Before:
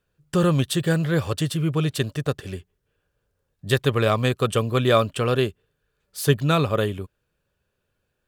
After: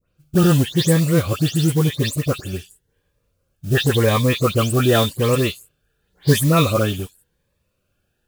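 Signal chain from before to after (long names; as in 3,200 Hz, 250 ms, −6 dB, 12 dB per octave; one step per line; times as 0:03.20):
every frequency bin delayed by itself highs late, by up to 173 ms
noise that follows the level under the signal 18 dB
phaser whose notches keep moving one way rising 0.91 Hz
level +6 dB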